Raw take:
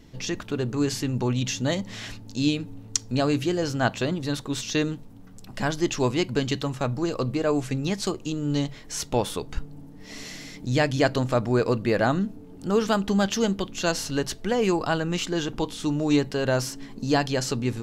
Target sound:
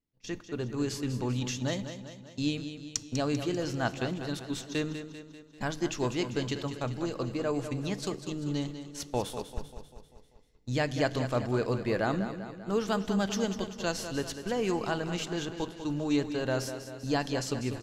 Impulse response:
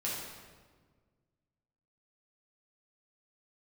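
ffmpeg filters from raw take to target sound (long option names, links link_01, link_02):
-filter_complex "[0:a]agate=range=-31dB:threshold=-30dB:ratio=16:detection=peak,aecho=1:1:196|392|588|784|980|1176:0.316|0.174|0.0957|0.0526|0.0289|0.0159,asplit=2[link_01][link_02];[1:a]atrim=start_sample=2205,asetrate=32634,aresample=44100[link_03];[link_02][link_03]afir=irnorm=-1:irlink=0,volume=-23dB[link_04];[link_01][link_04]amix=inputs=2:normalize=0,volume=-7.5dB"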